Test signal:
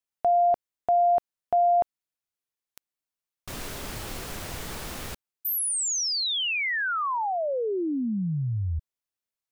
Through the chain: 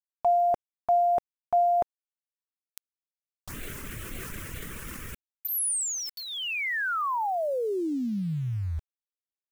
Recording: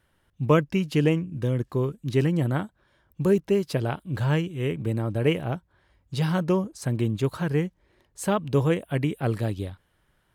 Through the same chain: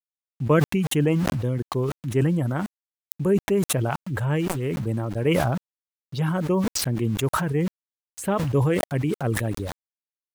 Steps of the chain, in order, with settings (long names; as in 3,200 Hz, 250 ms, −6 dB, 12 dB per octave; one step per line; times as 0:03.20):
reverb reduction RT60 0.7 s
phaser swept by the level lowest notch 230 Hz, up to 4,800 Hz, full sweep at −26 dBFS
centre clipping without the shift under −45 dBFS
level that may fall only so fast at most 22 dB per second